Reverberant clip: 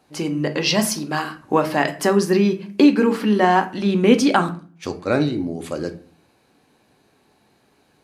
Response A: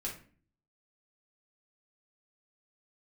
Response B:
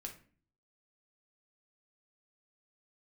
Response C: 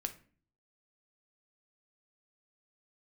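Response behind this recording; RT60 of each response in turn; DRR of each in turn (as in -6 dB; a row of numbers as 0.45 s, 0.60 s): C; 0.45 s, 0.45 s, 0.45 s; -4.0 dB, 1.5 dB, 6.5 dB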